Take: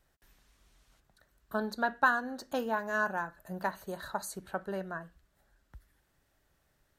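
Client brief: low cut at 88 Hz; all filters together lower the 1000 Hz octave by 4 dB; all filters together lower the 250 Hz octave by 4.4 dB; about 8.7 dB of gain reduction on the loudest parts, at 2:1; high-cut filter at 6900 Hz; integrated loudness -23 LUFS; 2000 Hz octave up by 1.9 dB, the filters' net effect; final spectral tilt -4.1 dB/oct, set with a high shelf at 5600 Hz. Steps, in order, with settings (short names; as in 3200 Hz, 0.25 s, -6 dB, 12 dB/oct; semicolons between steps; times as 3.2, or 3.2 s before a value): HPF 88 Hz; LPF 6900 Hz; bell 250 Hz -5 dB; bell 1000 Hz -6.5 dB; bell 2000 Hz +6.5 dB; high shelf 5600 Hz -3 dB; compressor 2:1, threshold -37 dBFS; gain +17 dB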